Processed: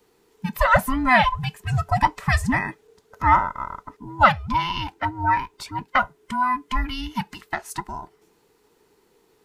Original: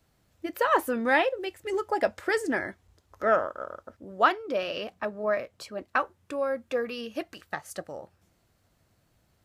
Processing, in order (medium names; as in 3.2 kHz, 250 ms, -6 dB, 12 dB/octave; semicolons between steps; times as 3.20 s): every band turned upside down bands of 500 Hz; trim +6.5 dB